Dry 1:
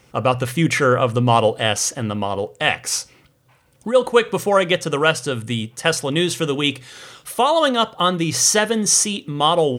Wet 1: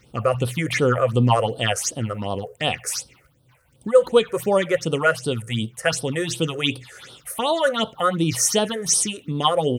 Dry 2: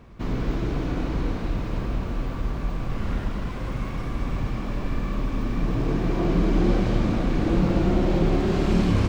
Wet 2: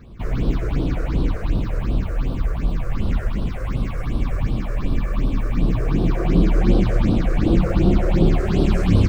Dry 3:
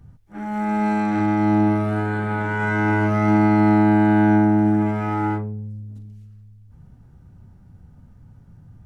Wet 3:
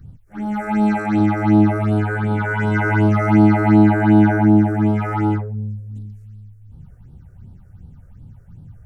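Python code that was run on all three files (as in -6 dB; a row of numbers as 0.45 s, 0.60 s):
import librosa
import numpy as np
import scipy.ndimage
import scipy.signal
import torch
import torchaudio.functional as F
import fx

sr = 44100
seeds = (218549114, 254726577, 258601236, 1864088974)

y = fx.phaser_stages(x, sr, stages=6, low_hz=220.0, high_hz=2000.0, hz=2.7, feedback_pct=30)
y = y * 10.0 ** (-3 / 20.0) / np.max(np.abs(y))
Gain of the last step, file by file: -0.5 dB, +5.0 dB, +5.0 dB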